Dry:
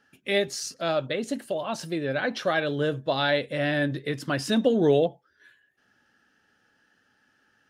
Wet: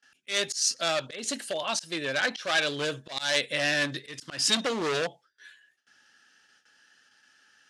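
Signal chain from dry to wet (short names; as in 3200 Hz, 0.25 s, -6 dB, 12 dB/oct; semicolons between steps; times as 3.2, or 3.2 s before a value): overloaded stage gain 22.5 dB; weighting filter ITU-R 468; auto swell 0.166 s; low shelf 240 Hz +11.5 dB; gate with hold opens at -52 dBFS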